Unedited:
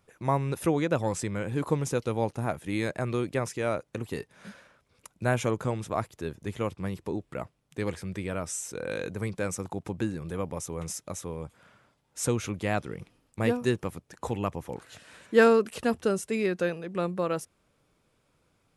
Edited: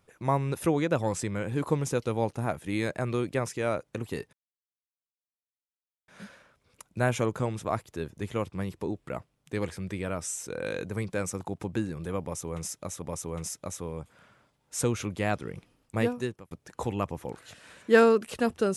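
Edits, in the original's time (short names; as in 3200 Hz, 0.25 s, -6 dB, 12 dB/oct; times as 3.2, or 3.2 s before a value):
4.33 insert silence 1.75 s
10.46–11.27 loop, 2 plays
13.43–13.95 fade out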